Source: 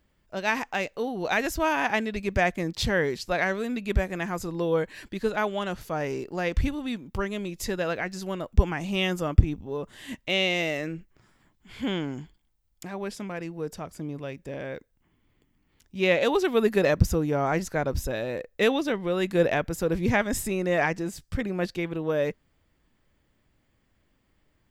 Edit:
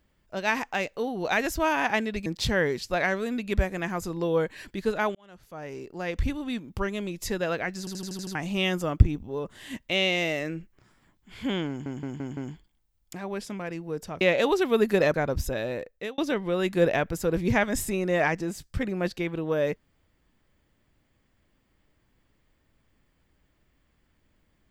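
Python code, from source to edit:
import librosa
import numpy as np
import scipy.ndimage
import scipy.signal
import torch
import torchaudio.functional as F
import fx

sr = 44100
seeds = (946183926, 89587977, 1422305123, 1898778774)

y = fx.edit(x, sr, fx.cut(start_s=2.26, length_s=0.38),
    fx.fade_in_span(start_s=5.53, length_s=1.41),
    fx.stutter_over(start_s=8.17, slice_s=0.08, count=7),
    fx.stutter(start_s=12.07, slice_s=0.17, count=5),
    fx.cut(start_s=13.91, length_s=2.13),
    fx.cut(start_s=16.97, length_s=0.75),
    fx.fade_out_span(start_s=18.29, length_s=0.47), tone=tone)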